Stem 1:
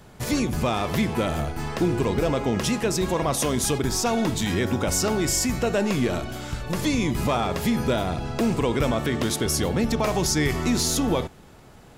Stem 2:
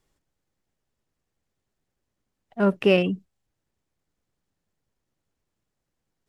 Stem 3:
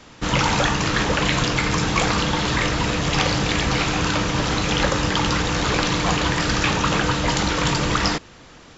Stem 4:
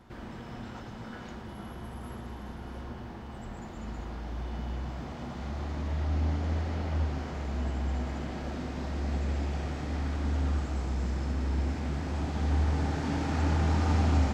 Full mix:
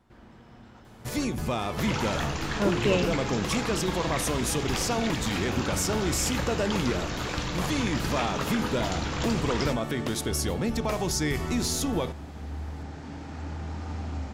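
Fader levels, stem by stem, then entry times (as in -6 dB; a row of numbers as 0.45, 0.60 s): -5.0, -6.5, -12.0, -9.0 dB; 0.85, 0.00, 1.55, 0.00 s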